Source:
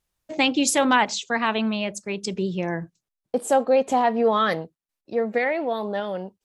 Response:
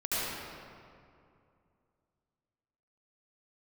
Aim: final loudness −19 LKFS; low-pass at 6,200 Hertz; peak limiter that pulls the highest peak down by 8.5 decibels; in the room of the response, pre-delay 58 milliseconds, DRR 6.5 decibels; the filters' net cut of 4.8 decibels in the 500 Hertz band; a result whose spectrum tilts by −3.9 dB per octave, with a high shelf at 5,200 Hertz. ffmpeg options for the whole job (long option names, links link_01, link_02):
-filter_complex "[0:a]lowpass=6200,equalizer=frequency=500:width_type=o:gain=-5.5,highshelf=frequency=5200:gain=3.5,alimiter=limit=-15.5dB:level=0:latency=1,asplit=2[link_01][link_02];[1:a]atrim=start_sample=2205,adelay=58[link_03];[link_02][link_03]afir=irnorm=-1:irlink=0,volume=-15.5dB[link_04];[link_01][link_04]amix=inputs=2:normalize=0,volume=7.5dB"